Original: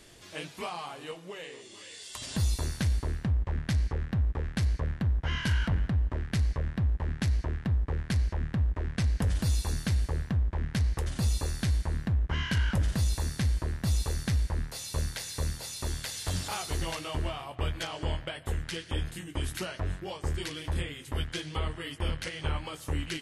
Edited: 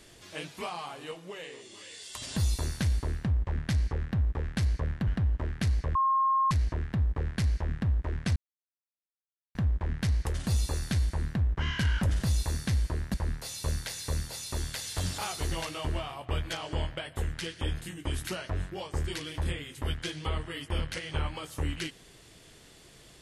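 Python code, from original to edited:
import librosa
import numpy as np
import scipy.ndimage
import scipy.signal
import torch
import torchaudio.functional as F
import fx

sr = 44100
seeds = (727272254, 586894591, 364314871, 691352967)

y = fx.edit(x, sr, fx.cut(start_s=5.07, length_s=0.72),
    fx.bleep(start_s=6.67, length_s=0.56, hz=1070.0, db=-22.0),
    fx.silence(start_s=9.08, length_s=1.19),
    fx.cut(start_s=13.86, length_s=0.58), tone=tone)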